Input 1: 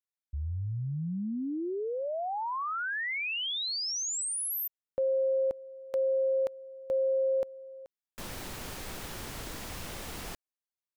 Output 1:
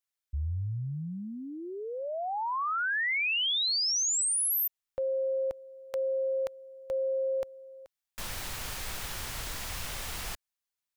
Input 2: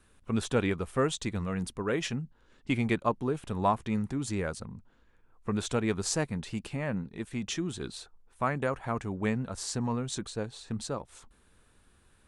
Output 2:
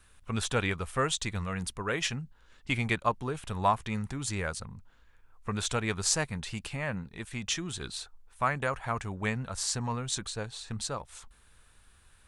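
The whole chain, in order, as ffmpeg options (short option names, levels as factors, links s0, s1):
-af "equalizer=f=290:w=0.56:g=-11.5,volume=1.78"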